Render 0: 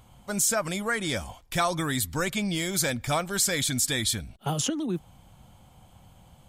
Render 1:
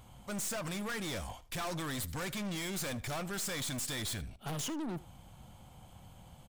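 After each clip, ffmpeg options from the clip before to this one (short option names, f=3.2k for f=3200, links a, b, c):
-af "aeval=exprs='(tanh(63.1*val(0)+0.3)-tanh(0.3))/63.1':c=same,aecho=1:1:78:0.106"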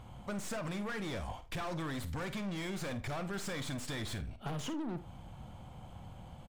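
-filter_complex "[0:a]lowpass=f=2.1k:p=1,acompressor=threshold=-41dB:ratio=6,asplit=2[a][b];[b]adelay=50,volume=-12.5dB[c];[a][c]amix=inputs=2:normalize=0,volume=5dB"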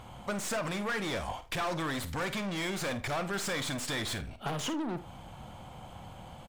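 -af "lowshelf=f=260:g=-9,volume=8dB"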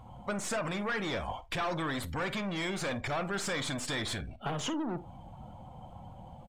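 -af "afftdn=nr=15:nf=-47"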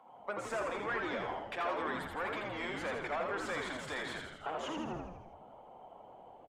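-filter_complex "[0:a]highpass=f=170:w=0.5412,highpass=f=170:w=1.3066,acrossover=split=320 2600:gain=0.0794 1 0.224[a][b][c];[a][b][c]amix=inputs=3:normalize=0,asplit=2[d][e];[e]asplit=8[f][g][h][i][j][k][l][m];[f]adelay=82,afreqshift=-87,volume=-3.5dB[n];[g]adelay=164,afreqshift=-174,volume=-8.1dB[o];[h]adelay=246,afreqshift=-261,volume=-12.7dB[p];[i]adelay=328,afreqshift=-348,volume=-17.2dB[q];[j]adelay=410,afreqshift=-435,volume=-21.8dB[r];[k]adelay=492,afreqshift=-522,volume=-26.4dB[s];[l]adelay=574,afreqshift=-609,volume=-31dB[t];[m]adelay=656,afreqshift=-696,volume=-35.6dB[u];[n][o][p][q][r][s][t][u]amix=inputs=8:normalize=0[v];[d][v]amix=inputs=2:normalize=0,volume=-2.5dB"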